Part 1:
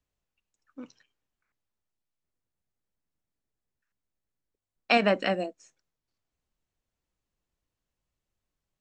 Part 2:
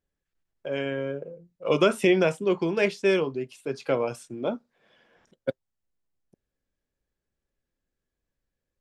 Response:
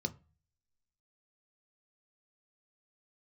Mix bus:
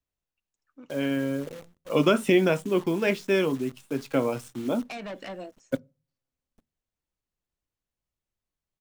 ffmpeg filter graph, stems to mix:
-filter_complex "[0:a]alimiter=limit=-15.5dB:level=0:latency=1:release=193,asoftclip=type=tanh:threshold=-27dB,volume=-5dB[link_01];[1:a]equalizer=frequency=270:width=3.9:gain=8.5,acrusher=bits=8:dc=4:mix=0:aa=0.000001,adelay=250,volume=0dB,asplit=2[link_02][link_03];[link_03]volume=-18dB[link_04];[2:a]atrim=start_sample=2205[link_05];[link_04][link_05]afir=irnorm=-1:irlink=0[link_06];[link_01][link_02][link_06]amix=inputs=3:normalize=0"

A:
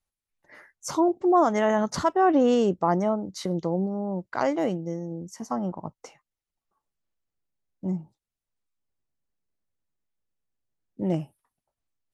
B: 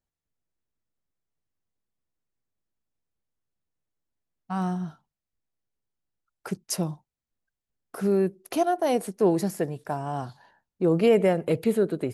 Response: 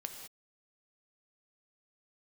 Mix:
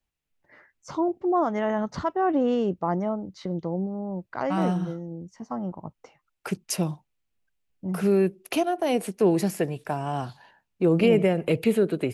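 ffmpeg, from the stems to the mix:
-filter_complex "[0:a]lowpass=3800,lowshelf=frequency=140:gain=7,volume=-4dB[link_01];[1:a]equalizer=frequency=2600:width=2:gain=8.5,acrossover=split=430[link_02][link_03];[link_03]acompressor=threshold=-27dB:ratio=6[link_04];[link_02][link_04]amix=inputs=2:normalize=0,volume=2dB[link_05];[link_01][link_05]amix=inputs=2:normalize=0"

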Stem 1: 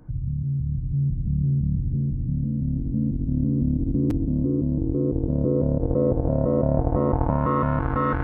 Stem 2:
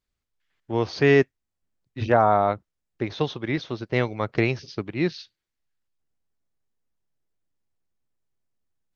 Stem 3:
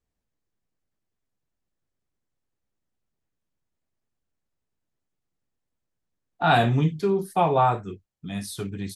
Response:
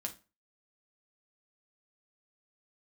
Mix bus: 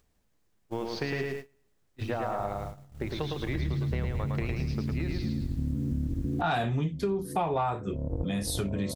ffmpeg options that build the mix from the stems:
-filter_complex "[0:a]equalizer=frequency=74:width_type=o:width=0.77:gain=7,adelay=2300,volume=-5dB,afade=type=in:start_time=3.4:duration=0.28:silence=0.251189[link_01];[1:a]bandreject=frequency=60:width_type=h:width=6,bandreject=frequency=120:width_type=h:width=6,bandreject=frequency=180:width_type=h:width=6,bandreject=frequency=240:width_type=h:width=6,bandreject=frequency=300:width_type=h:width=6,bandreject=frequency=360:width_type=h:width=6,bandreject=frequency=420:width_type=h:width=6,acompressor=threshold=-24dB:ratio=5,volume=-4dB,asplit=2[link_02][link_03];[link_03]volume=-3.5dB[link_04];[2:a]acompressor=mode=upward:threshold=-25dB:ratio=2.5,acontrast=83,volume=-6.5dB,asplit=3[link_05][link_06][link_07];[link_06]volume=-12dB[link_08];[link_07]apad=whole_len=464786[link_09];[link_01][link_09]sidechaincompress=threshold=-36dB:ratio=8:attack=16:release=390[link_10];[3:a]atrim=start_sample=2205[link_11];[link_08][link_11]afir=irnorm=-1:irlink=0[link_12];[link_04]aecho=0:1:109|218|327|436|545|654:1|0.45|0.202|0.0911|0.041|0.0185[link_13];[link_10][link_02][link_05][link_12][link_13]amix=inputs=5:normalize=0,agate=range=-23dB:threshold=-36dB:ratio=16:detection=peak,acompressor=threshold=-27dB:ratio=4"

